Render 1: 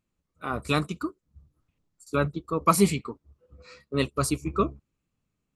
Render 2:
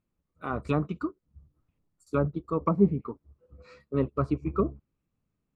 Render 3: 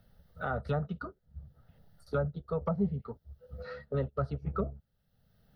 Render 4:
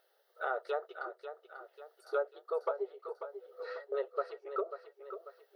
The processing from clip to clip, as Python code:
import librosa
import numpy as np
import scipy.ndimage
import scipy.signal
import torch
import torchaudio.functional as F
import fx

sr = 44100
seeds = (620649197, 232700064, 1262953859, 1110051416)

y1 = fx.env_lowpass_down(x, sr, base_hz=580.0, full_db=-18.5)
y1 = fx.high_shelf(y1, sr, hz=2500.0, db=-12.0)
y2 = fx.fixed_phaser(y1, sr, hz=1600.0, stages=8)
y2 = fx.band_squash(y2, sr, depth_pct=70)
y3 = fx.brickwall_highpass(y2, sr, low_hz=340.0)
y3 = fx.echo_feedback(y3, sr, ms=542, feedback_pct=46, wet_db=-10.0)